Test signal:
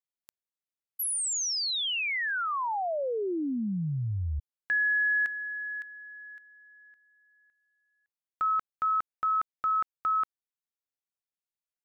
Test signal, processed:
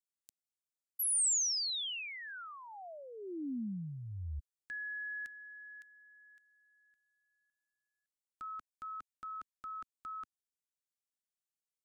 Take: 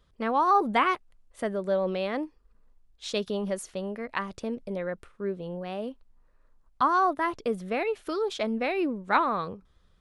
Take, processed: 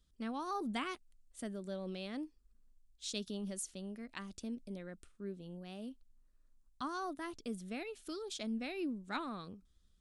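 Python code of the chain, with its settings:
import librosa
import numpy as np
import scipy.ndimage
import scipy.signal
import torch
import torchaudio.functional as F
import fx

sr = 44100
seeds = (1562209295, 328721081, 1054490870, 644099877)

y = fx.graphic_eq(x, sr, hz=(125, 250, 500, 1000, 2000, 8000), db=(-8, 3, -11, -11, -7, 7))
y = y * 10.0 ** (-6.0 / 20.0)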